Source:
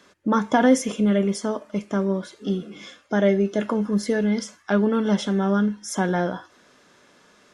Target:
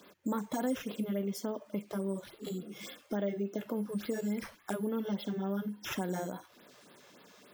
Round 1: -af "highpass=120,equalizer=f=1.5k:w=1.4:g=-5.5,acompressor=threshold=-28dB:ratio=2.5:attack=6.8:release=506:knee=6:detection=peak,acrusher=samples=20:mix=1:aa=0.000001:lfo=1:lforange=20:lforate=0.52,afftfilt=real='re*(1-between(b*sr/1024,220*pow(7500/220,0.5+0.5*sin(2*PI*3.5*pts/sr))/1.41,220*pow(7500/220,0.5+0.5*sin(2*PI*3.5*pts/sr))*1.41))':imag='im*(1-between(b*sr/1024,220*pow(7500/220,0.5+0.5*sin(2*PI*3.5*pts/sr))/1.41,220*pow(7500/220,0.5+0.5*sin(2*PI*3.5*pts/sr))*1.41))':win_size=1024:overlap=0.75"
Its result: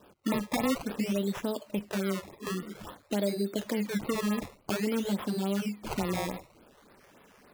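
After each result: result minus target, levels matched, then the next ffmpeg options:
decimation with a swept rate: distortion +10 dB; compressor: peak gain reduction -4 dB
-af "highpass=120,equalizer=f=1.5k:w=1.4:g=-5.5,acompressor=threshold=-28dB:ratio=2.5:attack=6.8:release=506:knee=6:detection=peak,acrusher=samples=4:mix=1:aa=0.000001:lfo=1:lforange=4:lforate=0.52,afftfilt=real='re*(1-between(b*sr/1024,220*pow(7500/220,0.5+0.5*sin(2*PI*3.5*pts/sr))/1.41,220*pow(7500/220,0.5+0.5*sin(2*PI*3.5*pts/sr))*1.41))':imag='im*(1-between(b*sr/1024,220*pow(7500/220,0.5+0.5*sin(2*PI*3.5*pts/sr))/1.41,220*pow(7500/220,0.5+0.5*sin(2*PI*3.5*pts/sr))*1.41))':win_size=1024:overlap=0.75"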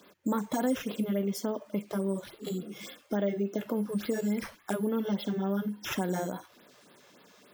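compressor: peak gain reduction -4 dB
-af "highpass=120,equalizer=f=1.5k:w=1.4:g=-5.5,acompressor=threshold=-35dB:ratio=2.5:attack=6.8:release=506:knee=6:detection=peak,acrusher=samples=4:mix=1:aa=0.000001:lfo=1:lforange=4:lforate=0.52,afftfilt=real='re*(1-between(b*sr/1024,220*pow(7500/220,0.5+0.5*sin(2*PI*3.5*pts/sr))/1.41,220*pow(7500/220,0.5+0.5*sin(2*PI*3.5*pts/sr))*1.41))':imag='im*(1-between(b*sr/1024,220*pow(7500/220,0.5+0.5*sin(2*PI*3.5*pts/sr))/1.41,220*pow(7500/220,0.5+0.5*sin(2*PI*3.5*pts/sr))*1.41))':win_size=1024:overlap=0.75"

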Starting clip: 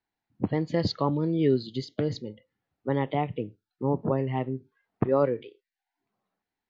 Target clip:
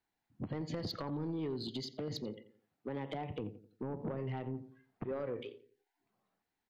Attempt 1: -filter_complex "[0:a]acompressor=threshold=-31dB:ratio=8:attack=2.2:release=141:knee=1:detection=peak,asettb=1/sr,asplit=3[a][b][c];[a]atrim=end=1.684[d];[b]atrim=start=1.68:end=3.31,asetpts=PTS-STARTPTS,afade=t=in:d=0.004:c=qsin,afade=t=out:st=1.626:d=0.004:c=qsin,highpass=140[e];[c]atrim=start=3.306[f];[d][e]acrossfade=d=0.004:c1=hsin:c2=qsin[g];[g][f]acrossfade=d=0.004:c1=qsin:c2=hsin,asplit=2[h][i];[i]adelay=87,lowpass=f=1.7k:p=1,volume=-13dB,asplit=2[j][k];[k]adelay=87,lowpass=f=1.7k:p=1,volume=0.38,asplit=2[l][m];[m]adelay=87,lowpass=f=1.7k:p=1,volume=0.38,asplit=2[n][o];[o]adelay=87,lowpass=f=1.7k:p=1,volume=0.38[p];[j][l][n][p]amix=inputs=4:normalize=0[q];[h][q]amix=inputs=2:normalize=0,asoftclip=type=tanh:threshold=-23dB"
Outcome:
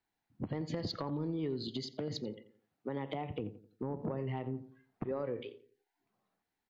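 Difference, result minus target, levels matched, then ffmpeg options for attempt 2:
soft clip: distortion -12 dB
-filter_complex "[0:a]acompressor=threshold=-31dB:ratio=8:attack=2.2:release=141:knee=1:detection=peak,asettb=1/sr,asplit=3[a][b][c];[a]atrim=end=1.684[d];[b]atrim=start=1.68:end=3.31,asetpts=PTS-STARTPTS,afade=t=in:d=0.004:c=qsin,afade=t=out:st=1.626:d=0.004:c=qsin,highpass=140[e];[c]atrim=start=3.306[f];[d][e]acrossfade=d=0.004:c1=hsin:c2=qsin[g];[g][f]acrossfade=d=0.004:c1=qsin:c2=hsin,asplit=2[h][i];[i]adelay=87,lowpass=f=1.7k:p=1,volume=-13dB,asplit=2[j][k];[k]adelay=87,lowpass=f=1.7k:p=1,volume=0.38,asplit=2[l][m];[m]adelay=87,lowpass=f=1.7k:p=1,volume=0.38,asplit=2[n][o];[o]adelay=87,lowpass=f=1.7k:p=1,volume=0.38[p];[j][l][n][p]amix=inputs=4:normalize=0[q];[h][q]amix=inputs=2:normalize=0,asoftclip=type=tanh:threshold=-31dB"

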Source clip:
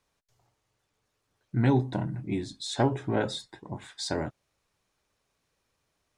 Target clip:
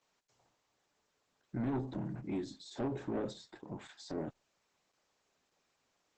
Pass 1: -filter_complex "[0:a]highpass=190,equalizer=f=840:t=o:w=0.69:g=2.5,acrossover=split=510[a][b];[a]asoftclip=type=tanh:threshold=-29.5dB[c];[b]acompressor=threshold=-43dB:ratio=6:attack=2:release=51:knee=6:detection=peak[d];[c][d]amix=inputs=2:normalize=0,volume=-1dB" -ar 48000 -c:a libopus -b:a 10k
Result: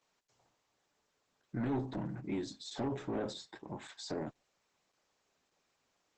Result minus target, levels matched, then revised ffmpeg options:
compressor: peak gain reduction -5.5 dB
-filter_complex "[0:a]highpass=190,equalizer=f=840:t=o:w=0.69:g=2.5,acrossover=split=510[a][b];[a]asoftclip=type=tanh:threshold=-29.5dB[c];[b]acompressor=threshold=-49.5dB:ratio=6:attack=2:release=51:knee=6:detection=peak[d];[c][d]amix=inputs=2:normalize=0,volume=-1dB" -ar 48000 -c:a libopus -b:a 10k

